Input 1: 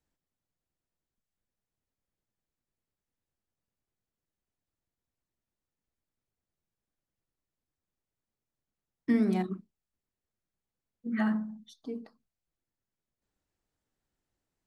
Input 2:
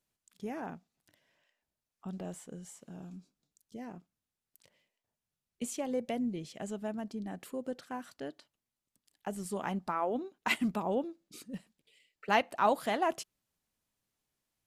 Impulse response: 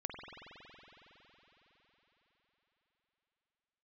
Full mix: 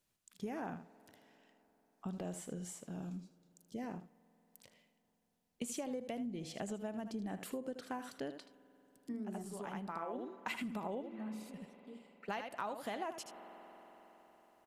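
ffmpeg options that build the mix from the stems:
-filter_complex "[0:a]equalizer=f=2900:t=o:w=1.8:g=-14.5,volume=0.178,asplit=2[s0][s1];[1:a]volume=1.26,asplit=3[s2][s3][s4];[s3]volume=0.0944[s5];[s4]volume=0.251[s6];[s1]apad=whole_len=646763[s7];[s2][s7]sidechaincompress=threshold=0.00141:ratio=8:attack=16:release=1390[s8];[2:a]atrim=start_sample=2205[s9];[s5][s9]afir=irnorm=-1:irlink=0[s10];[s6]aecho=0:1:78:1[s11];[s0][s8][s10][s11]amix=inputs=4:normalize=0,acompressor=threshold=0.0141:ratio=20"

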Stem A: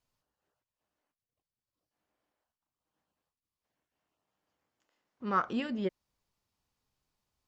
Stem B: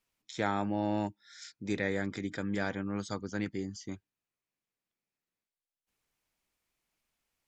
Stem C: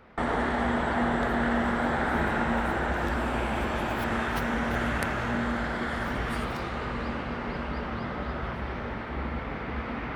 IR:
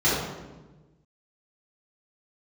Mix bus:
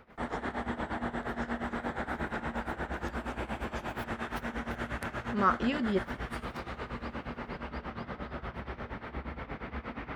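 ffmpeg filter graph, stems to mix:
-filter_complex "[0:a]adelay=100,volume=1.41[s0];[1:a]volume=0.531[s1];[2:a]volume=1[s2];[s1][s2]amix=inputs=2:normalize=0,tremolo=f=8.5:d=0.84,acompressor=threshold=0.00891:ratio=1.5,volume=1[s3];[s0][s3]amix=inputs=2:normalize=0"

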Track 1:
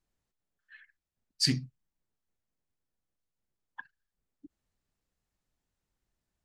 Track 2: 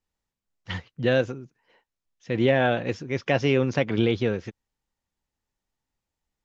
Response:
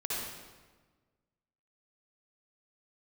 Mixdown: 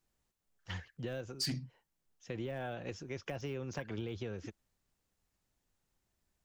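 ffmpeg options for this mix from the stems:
-filter_complex "[0:a]highpass=56,volume=1.33[s0];[1:a]deesser=0.95,equalizer=f=125:t=o:w=1:g=-11,equalizer=f=250:t=o:w=1:g=-10,equalizer=f=500:t=o:w=1:g=-7,equalizer=f=1000:t=o:w=1:g=-6,equalizer=f=2000:t=o:w=1:g=-9,equalizer=f=4000:t=o:w=1:g=-8,acrossover=split=190[s1][s2];[s2]acompressor=threshold=0.0126:ratio=3[s3];[s1][s3]amix=inputs=2:normalize=0,volume=1.26[s4];[s0][s4]amix=inputs=2:normalize=0,asoftclip=type=tanh:threshold=0.1,acompressor=threshold=0.0126:ratio=2.5"

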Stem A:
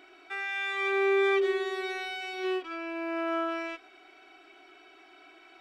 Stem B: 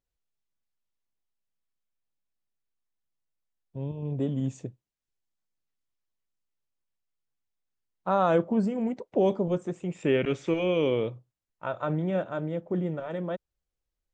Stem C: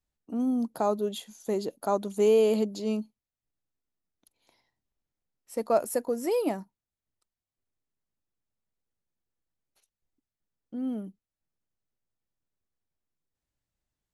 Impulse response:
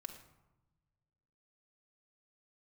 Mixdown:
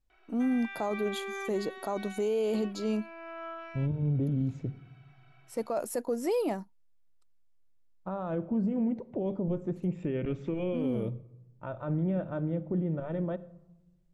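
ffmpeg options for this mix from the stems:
-filter_complex "[0:a]highpass=570,aemphasis=mode=reproduction:type=75fm,adelay=100,volume=0.376[s0];[1:a]alimiter=limit=0.0708:level=0:latency=1:release=174,aemphasis=mode=reproduction:type=riaa,volume=0.422,asplit=2[s1][s2];[s2]volume=0.668[s3];[2:a]highshelf=f=11000:g=-9,volume=1[s4];[3:a]atrim=start_sample=2205[s5];[s3][s5]afir=irnorm=-1:irlink=0[s6];[s0][s1][s4][s6]amix=inputs=4:normalize=0,alimiter=limit=0.075:level=0:latency=1:release=13"

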